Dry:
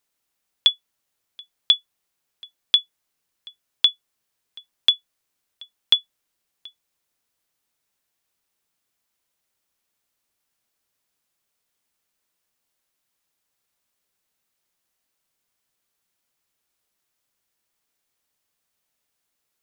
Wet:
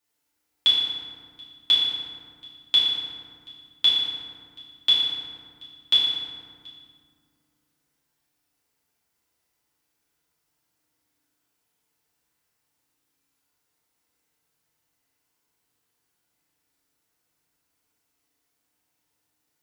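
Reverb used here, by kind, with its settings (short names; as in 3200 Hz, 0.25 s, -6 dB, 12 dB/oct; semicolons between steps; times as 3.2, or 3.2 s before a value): FDN reverb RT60 2 s, low-frequency decay 1.5×, high-frequency decay 0.5×, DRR -9.5 dB; gain -7 dB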